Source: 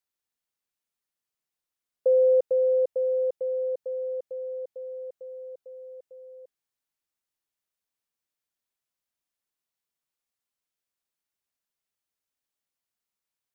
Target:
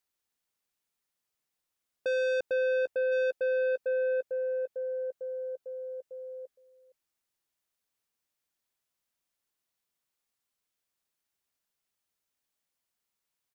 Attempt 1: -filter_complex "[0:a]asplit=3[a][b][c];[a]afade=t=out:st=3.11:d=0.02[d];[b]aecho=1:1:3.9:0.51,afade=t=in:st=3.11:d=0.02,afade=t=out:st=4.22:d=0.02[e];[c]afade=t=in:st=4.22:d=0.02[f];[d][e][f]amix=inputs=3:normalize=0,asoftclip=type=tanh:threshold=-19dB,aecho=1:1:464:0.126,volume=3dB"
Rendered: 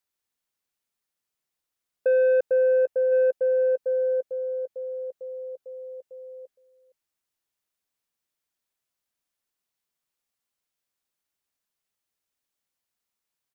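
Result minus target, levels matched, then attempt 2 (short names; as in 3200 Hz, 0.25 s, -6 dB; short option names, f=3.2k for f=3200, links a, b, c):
soft clip: distortion -10 dB
-filter_complex "[0:a]asplit=3[a][b][c];[a]afade=t=out:st=3.11:d=0.02[d];[b]aecho=1:1:3.9:0.51,afade=t=in:st=3.11:d=0.02,afade=t=out:st=4.22:d=0.02[e];[c]afade=t=in:st=4.22:d=0.02[f];[d][e][f]amix=inputs=3:normalize=0,asoftclip=type=tanh:threshold=-30dB,aecho=1:1:464:0.126,volume=3dB"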